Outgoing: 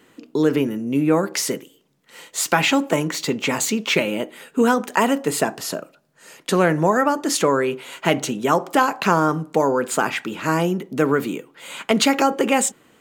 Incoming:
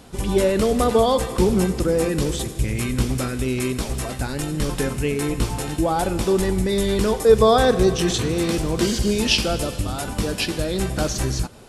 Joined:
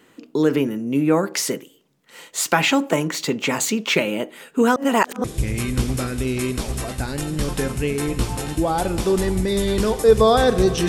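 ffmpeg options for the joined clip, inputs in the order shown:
-filter_complex "[0:a]apad=whole_dur=10.88,atrim=end=10.88,asplit=2[a][b];[a]atrim=end=4.762[c];[b]atrim=start=4.758:end=5.242,asetpts=PTS-STARTPTS,areverse[d];[1:a]atrim=start=2.448:end=8.09[e];[c][d]acrossfade=d=0.004:c1=hsin:c2=hsin[f];[f][e]acrossfade=d=0.004:c1=hsin:c2=hsin"

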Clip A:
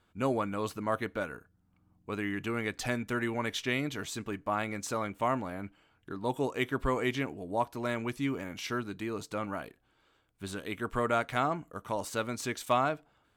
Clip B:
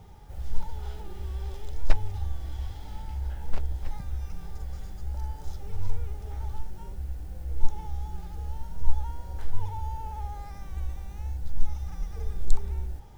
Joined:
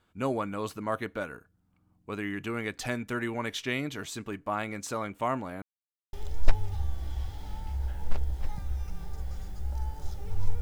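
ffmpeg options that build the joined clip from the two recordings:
-filter_complex "[0:a]apad=whole_dur=10.61,atrim=end=10.61,asplit=2[a][b];[a]atrim=end=5.62,asetpts=PTS-STARTPTS,afade=t=out:st=5.616:d=0.004:c=hsin[c];[b]atrim=start=5.62:end=6.13,asetpts=PTS-STARTPTS,volume=0[d];[1:a]atrim=start=1.55:end=6.03,asetpts=PTS-STARTPTS,afade=t=in:d=0.004:c=hsin[e];[c][d][e]concat=n=3:v=0:a=1"

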